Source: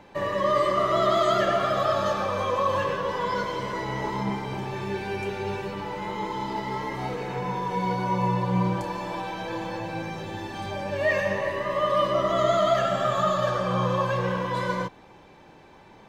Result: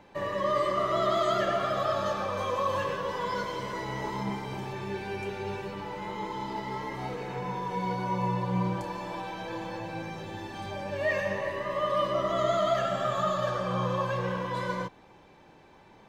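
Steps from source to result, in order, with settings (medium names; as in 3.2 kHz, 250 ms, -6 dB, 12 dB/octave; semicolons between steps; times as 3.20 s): 2.37–4.73 s: treble shelf 5.4 kHz +5 dB; trim -4.5 dB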